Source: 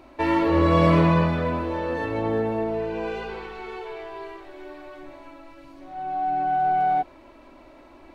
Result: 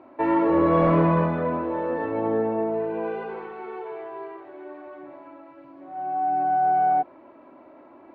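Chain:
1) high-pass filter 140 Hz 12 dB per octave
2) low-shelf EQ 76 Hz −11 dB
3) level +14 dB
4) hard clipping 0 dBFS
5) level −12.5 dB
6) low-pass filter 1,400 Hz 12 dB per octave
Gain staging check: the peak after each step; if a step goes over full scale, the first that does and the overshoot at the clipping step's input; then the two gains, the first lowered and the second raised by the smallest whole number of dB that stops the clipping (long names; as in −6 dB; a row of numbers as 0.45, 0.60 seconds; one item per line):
−5.5, −6.0, +8.0, 0.0, −12.5, −12.0 dBFS
step 3, 8.0 dB
step 3 +6 dB, step 5 −4.5 dB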